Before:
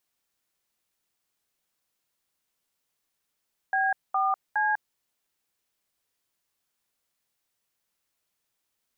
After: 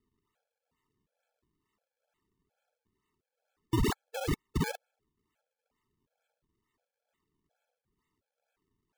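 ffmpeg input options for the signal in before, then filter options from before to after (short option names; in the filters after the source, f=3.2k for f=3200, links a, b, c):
-f lavfi -i "aevalsrc='0.0596*clip(min(mod(t,0.413),0.198-mod(t,0.413))/0.002,0,1)*(eq(floor(t/0.413),0)*(sin(2*PI*770*mod(t,0.413))+sin(2*PI*1633*mod(t,0.413)))+eq(floor(t/0.413),1)*(sin(2*PI*770*mod(t,0.413))+sin(2*PI*1209*mod(t,0.413)))+eq(floor(t/0.413),2)*(sin(2*PI*852*mod(t,0.413))+sin(2*PI*1633*mod(t,0.413))))':d=1.239:s=44100"
-af "lowshelf=f=420:g=-7,acrusher=samples=38:mix=1:aa=0.000001:lfo=1:lforange=60.8:lforate=2.2,afftfilt=real='re*gt(sin(2*PI*1.4*pts/sr)*(1-2*mod(floor(b*sr/1024/440),2)),0)':imag='im*gt(sin(2*PI*1.4*pts/sr)*(1-2*mod(floor(b*sr/1024/440),2)),0)':win_size=1024:overlap=0.75"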